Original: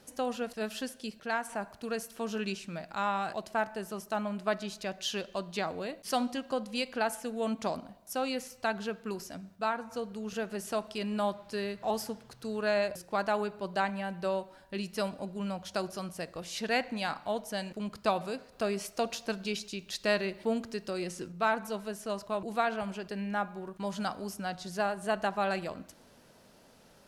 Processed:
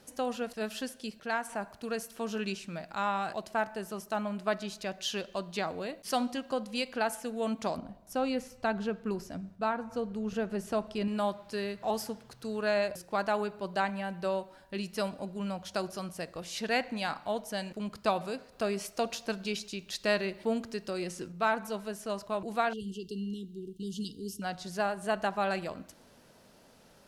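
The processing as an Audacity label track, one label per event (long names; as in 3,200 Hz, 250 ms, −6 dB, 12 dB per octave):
7.780000	11.080000	spectral tilt −2 dB per octave
22.730000	24.420000	linear-phase brick-wall band-stop 470–2,700 Hz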